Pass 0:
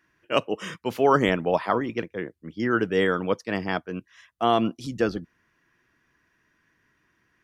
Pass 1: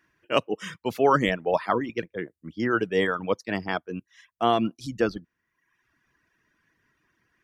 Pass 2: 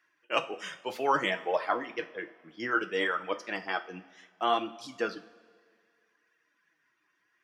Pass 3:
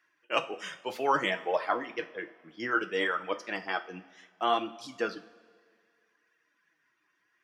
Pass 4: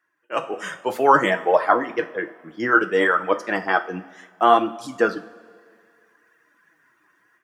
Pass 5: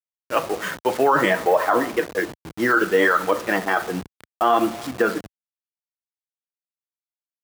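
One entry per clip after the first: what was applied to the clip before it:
reverb reduction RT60 0.9 s
meter weighting curve A; flanger 0.63 Hz, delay 1.4 ms, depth 9.6 ms, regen +39%; coupled-rooms reverb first 0.36 s, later 2 s, from −17 dB, DRR 7 dB
no processing that can be heard
flat-topped bell 3,600 Hz −9 dB; automatic gain control gain up to 14 dB
hold until the input has moved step −32.5 dBFS; high-pass filter 72 Hz 12 dB per octave; brickwall limiter −12 dBFS, peak gain reduction 10 dB; level +4 dB

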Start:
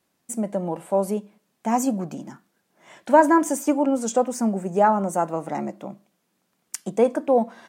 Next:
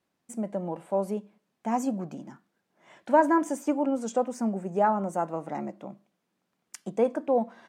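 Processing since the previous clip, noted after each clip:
high-shelf EQ 6,500 Hz −11 dB
level −5.5 dB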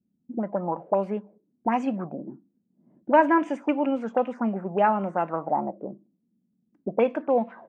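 envelope-controlled low-pass 220–2,700 Hz up, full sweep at −24 dBFS
level +1.5 dB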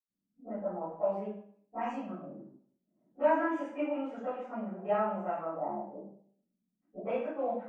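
convolution reverb RT60 0.60 s, pre-delay 60 ms

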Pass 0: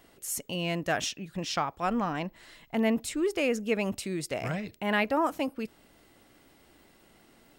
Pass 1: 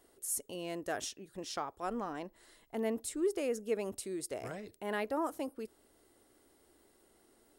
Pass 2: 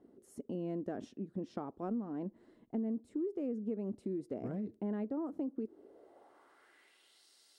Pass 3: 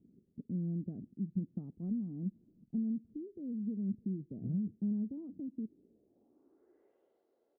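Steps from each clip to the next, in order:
graphic EQ with 15 bands 160 Hz −9 dB, 400 Hz +7 dB, 2,500 Hz −7 dB, 10,000 Hz +10 dB; level −9 dB
band-pass filter sweep 220 Hz → 4,600 Hz, 0:05.51–0:07.26; downward compressor 6 to 1, threshold −49 dBFS, peak gain reduction 13 dB; level +14.5 dB
low-pass filter sweep 170 Hz → 520 Hz, 0:06.05–0:06.93; far-end echo of a speakerphone 310 ms, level −30 dB; level +1 dB

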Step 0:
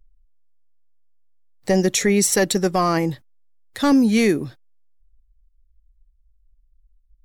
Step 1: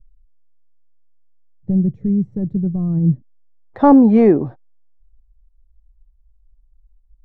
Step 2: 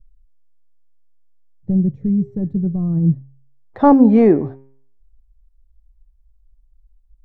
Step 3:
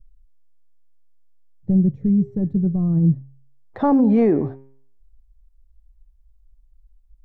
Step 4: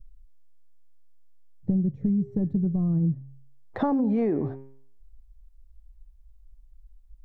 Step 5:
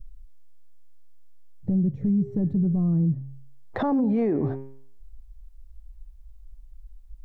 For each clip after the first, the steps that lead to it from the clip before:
low-pass filter sweep 140 Hz → 820 Hz, 0:03.00–0:03.62; level +5 dB
hum removal 134.4 Hz, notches 24
brickwall limiter −9.5 dBFS, peak gain reduction 8.5 dB
downward compressor 6 to 1, threshold −24 dBFS, peak gain reduction 11 dB; level +2 dB
brickwall limiter −23.5 dBFS, peak gain reduction 10 dB; level +6.5 dB

